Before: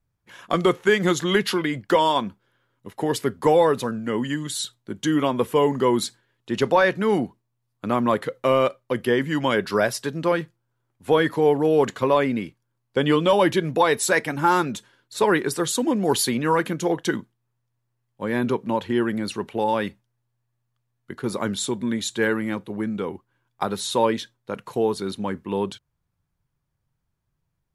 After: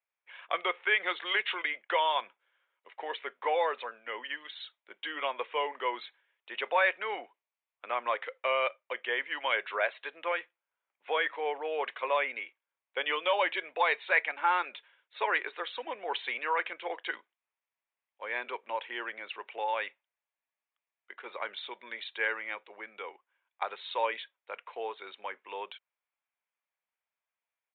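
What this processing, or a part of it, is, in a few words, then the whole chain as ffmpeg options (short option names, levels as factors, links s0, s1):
musical greeting card: -af "aresample=8000,aresample=44100,highpass=f=560:w=0.5412,highpass=f=560:w=1.3066,equalizer=f=2300:t=o:w=0.59:g=10,volume=0.398"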